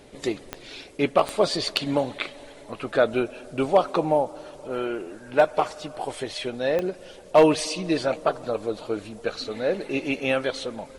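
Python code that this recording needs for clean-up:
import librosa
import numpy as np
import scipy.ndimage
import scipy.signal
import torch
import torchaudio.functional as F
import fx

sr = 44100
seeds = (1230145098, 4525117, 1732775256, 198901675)

y = fx.fix_declip(x, sr, threshold_db=-8.0)
y = fx.fix_declick_ar(y, sr, threshold=10.0)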